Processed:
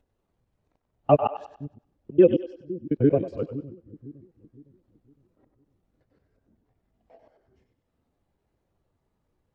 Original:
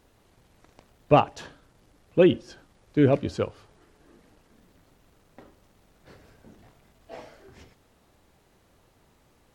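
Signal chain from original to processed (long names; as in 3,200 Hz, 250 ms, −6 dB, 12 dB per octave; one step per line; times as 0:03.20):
reversed piece by piece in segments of 91 ms
upward compression, threshold −46 dBFS
echo with a time of its own for lows and highs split 350 Hz, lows 510 ms, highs 96 ms, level −8 dB
every bin expanded away from the loudest bin 1.5 to 1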